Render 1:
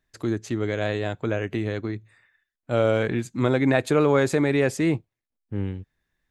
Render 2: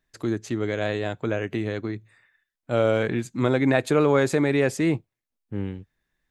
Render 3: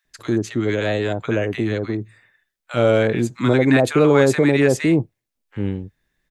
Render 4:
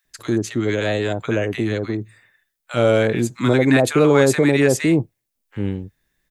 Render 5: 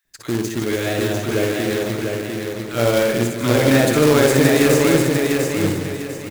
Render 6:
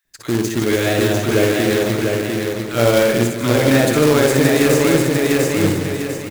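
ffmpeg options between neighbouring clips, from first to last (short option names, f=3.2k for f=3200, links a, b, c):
-af "equalizer=f=82:t=o:w=0.41:g=-9"
-filter_complex "[0:a]acrossover=split=1000[a][b];[a]adelay=50[c];[c][b]amix=inputs=2:normalize=0,volume=6dB"
-af "highshelf=f=7k:g=9"
-filter_complex "[0:a]asplit=2[a][b];[b]aecho=0:1:60|156|309.6|555.4|948.6:0.631|0.398|0.251|0.158|0.1[c];[a][c]amix=inputs=2:normalize=0,acrusher=bits=2:mode=log:mix=0:aa=0.000001,asplit=2[d][e];[e]aecho=0:1:698|1396|2094|2792:0.631|0.208|0.0687|0.0227[f];[d][f]amix=inputs=2:normalize=0,volume=-3dB"
-af "dynaudnorm=f=100:g=5:m=5dB"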